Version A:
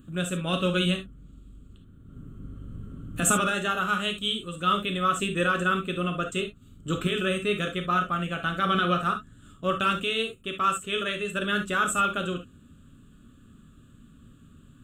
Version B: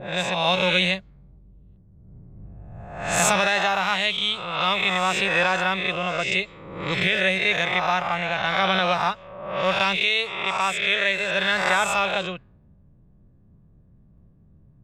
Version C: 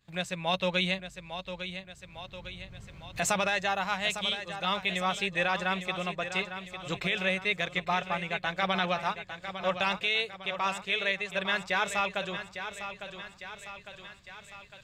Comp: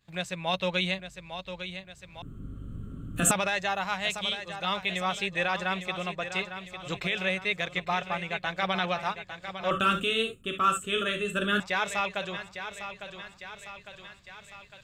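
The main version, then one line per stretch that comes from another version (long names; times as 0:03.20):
C
0:02.22–0:03.31: punch in from A
0:09.71–0:11.60: punch in from A
not used: B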